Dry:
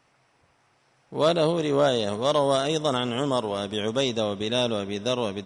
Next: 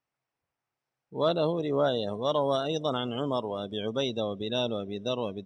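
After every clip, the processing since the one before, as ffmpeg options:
-af "afftdn=nr=19:nf=-32,volume=0.596"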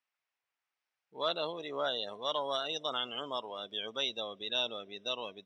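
-af "bandpass=f=2800:t=q:w=0.76:csg=0,volume=1.26"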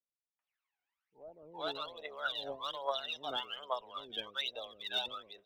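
-filter_complex "[0:a]acrossover=split=400 4000:gain=0.251 1 0.158[s0][s1][s2];[s0][s1][s2]amix=inputs=3:normalize=0,aphaser=in_gain=1:out_gain=1:delay=1.4:decay=0.79:speed=1.2:type=triangular,acrossover=split=480[s3][s4];[s4]adelay=390[s5];[s3][s5]amix=inputs=2:normalize=0,volume=0.631"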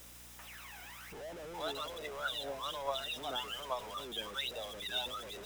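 -af "aeval=exprs='val(0)+0.5*0.0112*sgn(val(0))':c=same,bandreject=f=4400:w=10,aeval=exprs='val(0)+0.00158*(sin(2*PI*60*n/s)+sin(2*PI*2*60*n/s)/2+sin(2*PI*3*60*n/s)/3+sin(2*PI*4*60*n/s)/4+sin(2*PI*5*60*n/s)/5)':c=same,volume=0.708"

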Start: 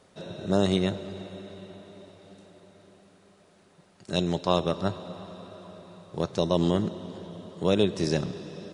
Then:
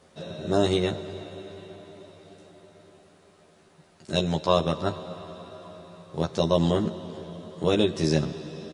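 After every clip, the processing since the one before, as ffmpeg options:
-filter_complex "[0:a]asplit=2[s0][s1];[s1]adelay=13,volume=0.75[s2];[s0][s2]amix=inputs=2:normalize=0"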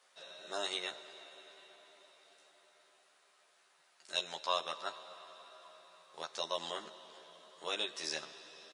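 -af "highpass=1100,volume=0.562"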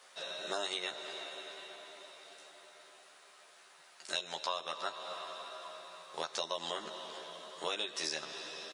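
-af "acompressor=threshold=0.00708:ratio=6,volume=2.99"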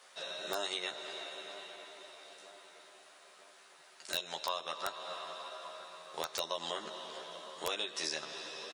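-filter_complex "[0:a]asplit=2[s0][s1];[s1]adelay=963,lowpass=f=2000:p=1,volume=0.158,asplit=2[s2][s3];[s3]adelay=963,lowpass=f=2000:p=1,volume=0.54,asplit=2[s4][s5];[s5]adelay=963,lowpass=f=2000:p=1,volume=0.54,asplit=2[s6][s7];[s7]adelay=963,lowpass=f=2000:p=1,volume=0.54,asplit=2[s8][s9];[s9]adelay=963,lowpass=f=2000:p=1,volume=0.54[s10];[s0][s2][s4][s6][s8][s10]amix=inputs=6:normalize=0,aeval=exprs='(mod(11.2*val(0)+1,2)-1)/11.2':c=same"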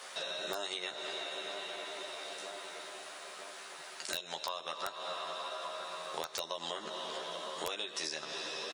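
-af "acompressor=threshold=0.00282:ratio=3,volume=3.76"

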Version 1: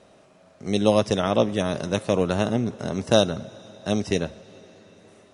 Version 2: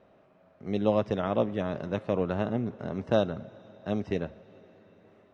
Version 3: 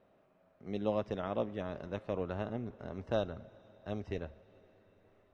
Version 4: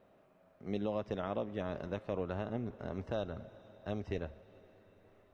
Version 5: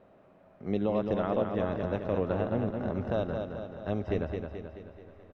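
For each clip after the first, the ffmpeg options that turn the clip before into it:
-af "lowpass=2200,volume=0.501"
-af "asubboost=boost=9.5:cutoff=55,volume=0.422"
-af "alimiter=level_in=1.33:limit=0.0631:level=0:latency=1:release=213,volume=0.75,volume=1.33"
-af "aemphasis=mode=reproduction:type=75kf,aecho=1:1:216|432|648|864|1080|1296|1512:0.531|0.287|0.155|0.0836|0.0451|0.0244|0.0132,volume=2.24"

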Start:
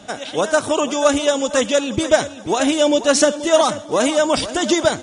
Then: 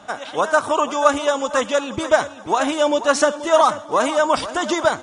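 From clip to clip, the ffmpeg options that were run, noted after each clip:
-af "equalizer=f=1100:t=o:w=1.4:g=13,volume=0.447"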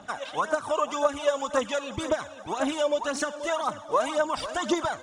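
-af "acompressor=threshold=0.126:ratio=6,aphaser=in_gain=1:out_gain=1:delay=2:decay=0.55:speed=1.9:type=triangular,volume=0.473"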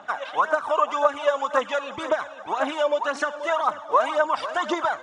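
-af "bandpass=f=1200:t=q:w=0.76:csg=0,volume=2.11"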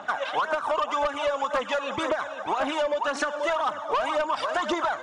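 -af "asoftclip=type=tanh:threshold=0.126,acompressor=threshold=0.0398:ratio=6,volume=1.78"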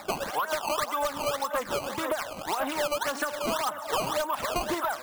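-af "acrusher=samples=14:mix=1:aa=0.000001:lfo=1:lforange=22.4:lforate=1.8,volume=0.708"

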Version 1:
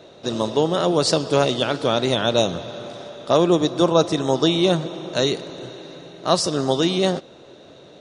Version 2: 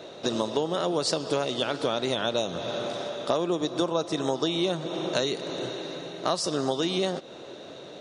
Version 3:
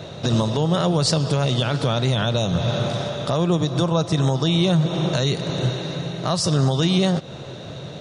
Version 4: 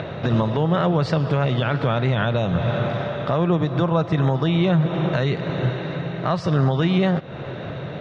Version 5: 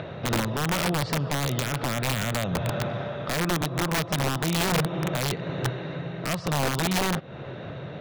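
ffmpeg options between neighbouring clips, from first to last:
-af "lowshelf=f=120:g=-11.5,acompressor=threshold=0.0447:ratio=6,volume=1.5"
-af "lowshelf=f=200:t=q:w=1.5:g=14,alimiter=limit=0.15:level=0:latency=1:release=30,volume=2.11"
-af "acompressor=mode=upward:threshold=0.0631:ratio=2.5,lowpass=f=2000:t=q:w=1.6"
-af "aeval=exprs='(mod(4.47*val(0)+1,2)-1)/4.47':c=same,volume=0.501"

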